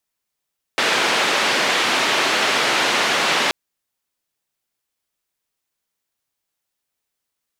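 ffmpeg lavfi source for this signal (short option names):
-f lavfi -i "anoisesrc=c=white:d=2.73:r=44100:seed=1,highpass=f=280,lowpass=f=3100,volume=-5.2dB"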